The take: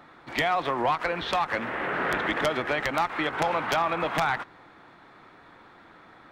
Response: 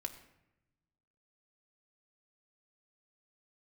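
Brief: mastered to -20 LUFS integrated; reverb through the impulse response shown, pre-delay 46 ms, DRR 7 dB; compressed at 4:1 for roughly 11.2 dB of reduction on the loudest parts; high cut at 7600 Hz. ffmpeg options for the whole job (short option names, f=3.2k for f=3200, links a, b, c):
-filter_complex "[0:a]lowpass=7.6k,acompressor=threshold=-35dB:ratio=4,asplit=2[a][b];[1:a]atrim=start_sample=2205,adelay=46[c];[b][c]afir=irnorm=-1:irlink=0,volume=-5.5dB[d];[a][d]amix=inputs=2:normalize=0,volume=16dB"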